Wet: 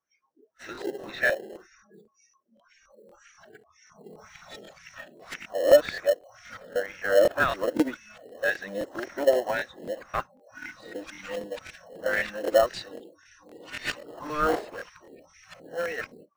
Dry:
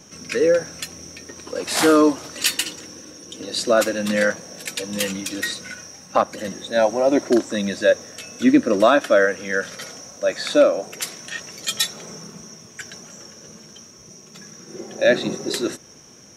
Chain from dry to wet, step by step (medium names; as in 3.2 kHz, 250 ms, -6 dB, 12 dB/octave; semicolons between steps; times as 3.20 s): reverse the whole clip; wah-wah 1.9 Hz 420–2100 Hz, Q 2.5; dynamic bell 210 Hz, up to -6 dB, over -44 dBFS, Q 1.8; in parallel at -10 dB: sample-rate reducer 1.2 kHz, jitter 0%; on the sum: spectral noise reduction 29 dB; crackling interface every 0.26 s, samples 1024, repeat, from 0.73 s